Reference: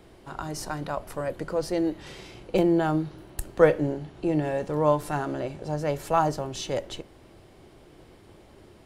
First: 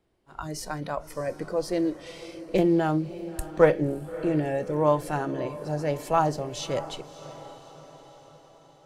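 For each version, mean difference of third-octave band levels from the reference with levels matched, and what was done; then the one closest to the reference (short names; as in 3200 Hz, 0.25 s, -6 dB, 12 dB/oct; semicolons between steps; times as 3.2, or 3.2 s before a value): 4.0 dB: spectral noise reduction 11 dB; gate -51 dBFS, range -9 dB; diffused feedback echo 0.613 s, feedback 53%, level -15 dB; Doppler distortion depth 0.13 ms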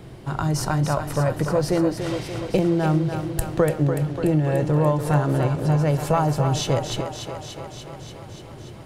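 6.0 dB: bell 130 Hz +13.5 dB 0.87 oct; compressor 6:1, threshold -24 dBFS, peak gain reduction 13 dB; on a send: thinning echo 0.291 s, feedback 72%, high-pass 230 Hz, level -7 dB; on the sum: gain +7 dB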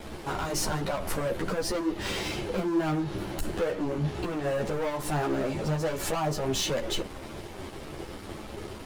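10.5 dB: compressor 8:1, threshold -31 dBFS, peak gain reduction 19 dB; sample leveller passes 5; limiter -20 dBFS, peak gain reduction 4 dB; ensemble effect; gain -1.5 dB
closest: first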